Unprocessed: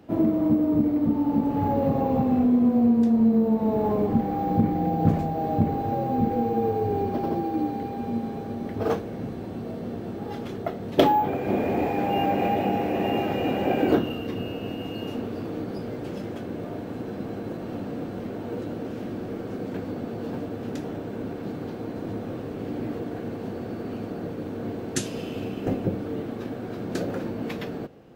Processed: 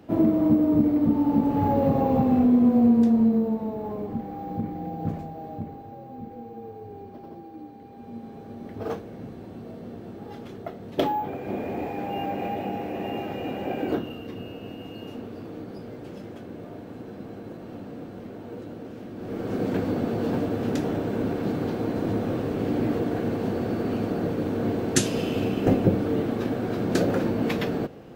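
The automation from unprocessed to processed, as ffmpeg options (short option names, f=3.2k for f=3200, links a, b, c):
-af "volume=23dB,afade=t=out:st=3.03:d=0.72:silence=0.316228,afade=t=out:st=5.11:d=0.8:silence=0.446684,afade=t=in:st=7.79:d=0.99:silence=0.334965,afade=t=in:st=19.15:d=0.48:silence=0.251189"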